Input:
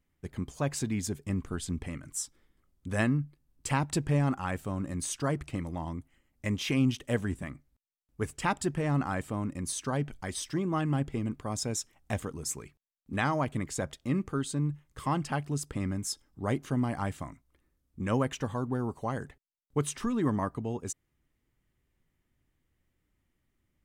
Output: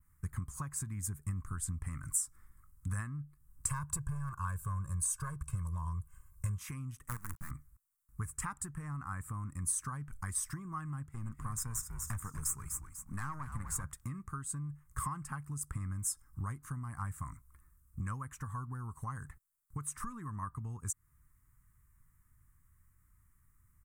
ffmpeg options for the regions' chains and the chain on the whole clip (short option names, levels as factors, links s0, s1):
-filter_complex "[0:a]asettb=1/sr,asplit=3[s0][s1][s2];[s0]atrim=end=3.684[s3];[s1]atrim=start=3.68:end=6.58,asetpts=PTS-STARTPTS,afade=t=in:d=0.004:c=qsin,afade=t=out:st=2.896:d=0.004:c=qsin,equalizer=f=2000:t=o:w=0.29:g=-13.5,volume=16.8,asoftclip=hard,volume=0.0596,aecho=1:1:1.9:0.95,atrim=end_sample=127890[s4];[s2]atrim=start=6.576[s5];[s3][s4]acrossfade=d=0.004:c1=hsin:c2=qsin[s6];[s6][s5]acrossfade=d=0.004:c1=qsin:c2=hsin,asettb=1/sr,asplit=3[s7][s8][s9];[s7]atrim=end=7.084[s10];[s8]atrim=start=7.08:end=7.51,asetpts=PTS-STARTPTS,afade=t=in:d=0.004:c=qsin,afade=t=out:st=0.426:d=0.004:c=qsin,lowpass=f=2800:p=1,acrusher=bits=5:dc=4:mix=0:aa=0.000001[s11];[s9]atrim=start=7.506[s12];[s10][s11]acrossfade=d=0.004:c1=hsin:c2=qsin[s13];[s13][s12]acrossfade=d=0.004:c1=qsin:c2=hsin,asettb=1/sr,asplit=3[s14][s15][s16];[s14]atrim=end=11.064[s17];[s15]atrim=start=11.06:end=13.84,asetpts=PTS-STARTPTS,afade=t=in:d=0.004:c=qsin,afade=t=out:st=2.776:d=0.004:c=qsin,highpass=83,aeval=exprs='(tanh(20*val(0)+0.55)-tanh(0.55))/20':c=same,asplit=5[s18][s19][s20][s21][s22];[s19]adelay=246,afreqshift=-82,volume=0.266[s23];[s20]adelay=492,afreqshift=-164,volume=0.0989[s24];[s21]adelay=738,afreqshift=-246,volume=0.0363[s25];[s22]adelay=984,afreqshift=-328,volume=0.0135[s26];[s18][s23][s24][s25][s26]amix=inputs=5:normalize=0,atrim=end_sample=122598[s27];[s16]atrim=start=13.836[s28];[s17][s27]acrossfade=d=0.004:c1=hsin:c2=qsin[s29];[s29][s28]acrossfade=d=0.004:c1=qsin:c2=hsin,adynamicequalizer=threshold=0.00316:dfrequency=5100:dqfactor=0.82:tfrequency=5100:tqfactor=0.82:attack=5:release=100:ratio=0.375:range=2:mode=cutabove:tftype=bell,acompressor=threshold=0.00891:ratio=12,firequalizer=gain_entry='entry(100,0);entry(240,-15);entry(400,-22);entry(630,-25);entry(1100,1);entry(3100,-23);entry(8300,3)':delay=0.05:min_phase=1,volume=3.35"